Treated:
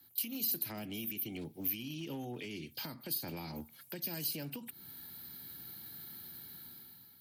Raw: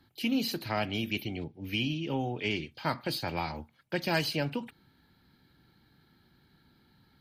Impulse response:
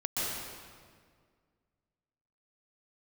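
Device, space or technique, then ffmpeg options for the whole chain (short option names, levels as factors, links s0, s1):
FM broadcast chain: -filter_complex "[0:a]highpass=76,dynaudnorm=f=290:g=5:m=4.22,acrossover=split=160|360[s0][s1][s2];[s0]acompressor=threshold=0.00447:ratio=4[s3];[s1]acompressor=threshold=0.0251:ratio=4[s4];[s2]acompressor=threshold=0.01:ratio=4[s5];[s3][s4][s5]amix=inputs=3:normalize=0,aemphasis=mode=production:type=50fm,alimiter=level_in=1.33:limit=0.0631:level=0:latency=1:release=232,volume=0.75,asoftclip=type=hard:threshold=0.0376,lowpass=f=15000:w=0.5412,lowpass=f=15000:w=1.3066,aemphasis=mode=production:type=50fm,asettb=1/sr,asplit=3[s6][s7][s8];[s6]atrim=end=0.624[s9];[s7]atrim=start=0.62:end=1.38,asetpts=PTS-STARTPTS,afade=t=in:d=0.004:c=qsin,afade=t=out:st=0.756:d=0.004:c=qsin,equalizer=f=4400:w=4:g=-6[s10];[s8]atrim=start=1.376[s11];[s9][s10]acrossfade=d=0.004:c1=hsin:c2=qsin[s12];[s12][s11]acrossfade=d=0.004:c1=qsin:c2=hsin,volume=0.447"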